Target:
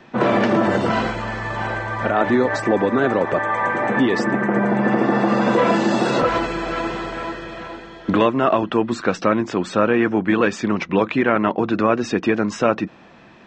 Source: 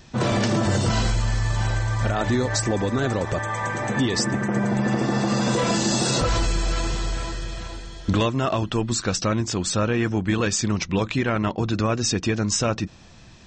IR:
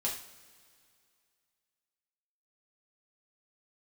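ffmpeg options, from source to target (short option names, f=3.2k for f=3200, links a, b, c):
-filter_complex "[0:a]acrossover=split=190 2700:gain=0.0708 1 0.0708[a][b][c];[a][b][c]amix=inputs=3:normalize=0,volume=7.5dB"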